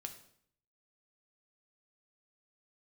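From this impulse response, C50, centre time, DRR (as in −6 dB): 10.5 dB, 12 ms, 5.0 dB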